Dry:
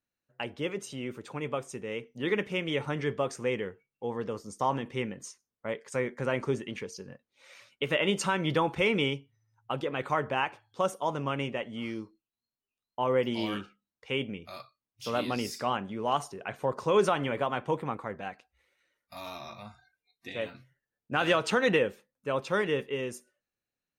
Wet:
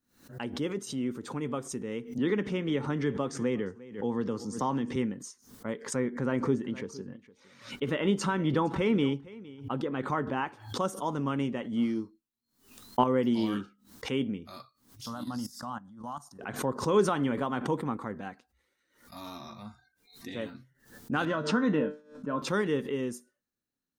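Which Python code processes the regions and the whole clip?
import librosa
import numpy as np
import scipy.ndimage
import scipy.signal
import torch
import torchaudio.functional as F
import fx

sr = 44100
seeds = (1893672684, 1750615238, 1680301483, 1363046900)

y = fx.chain(x, sr, fx.air_absorb(metres=55.0),
    fx.echo_single(ms=352, db=-22.0),
    fx.band_squash(depth_pct=40), at=(2.18, 4.96))
y = fx.chain(y, sr, fx.high_shelf(hz=5100.0, db=-11.0),
    fx.echo_single(ms=462, db=-20.0), at=(5.81, 10.48))
y = fx.chain(y, sr, fx.transient(attack_db=11, sustain_db=0),
    fx.doubler(ms=21.0, db=-14.0), at=(11.74, 13.04))
y = fx.chain(y, sr, fx.high_shelf(hz=4100.0, db=4.0),
    fx.level_steps(step_db=17),
    fx.fixed_phaser(hz=990.0, stages=4), at=(15.06, 16.39))
y = fx.chain(y, sr, fx.air_absorb(metres=87.0),
    fx.comb_fb(f0_hz=150.0, decay_s=0.3, harmonics='all', damping=0.0, mix_pct=80),
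    fx.small_body(hz=(240.0, 610.0, 1000.0, 1400.0), ring_ms=20, db=12), at=(21.25, 22.42))
y = fx.graphic_eq_15(y, sr, hz=(250, 630, 2500), db=(8, -6, -9))
y = fx.pre_swell(y, sr, db_per_s=120.0)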